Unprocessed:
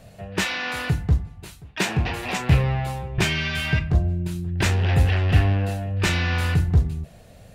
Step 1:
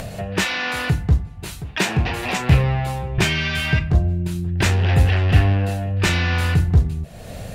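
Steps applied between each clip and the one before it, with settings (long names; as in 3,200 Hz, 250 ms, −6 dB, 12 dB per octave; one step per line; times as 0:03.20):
upward compression, threshold −23 dBFS
level +3 dB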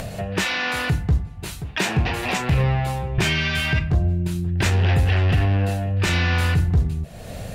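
brickwall limiter −10.5 dBFS, peak gain reduction 9 dB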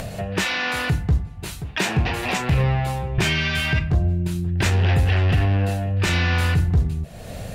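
no processing that can be heard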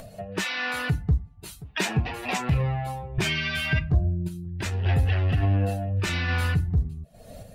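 spectral dynamics exaggerated over time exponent 1.5
sample-and-hold tremolo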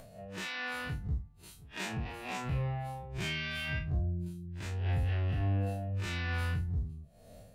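spectrum smeared in time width 81 ms
level −8 dB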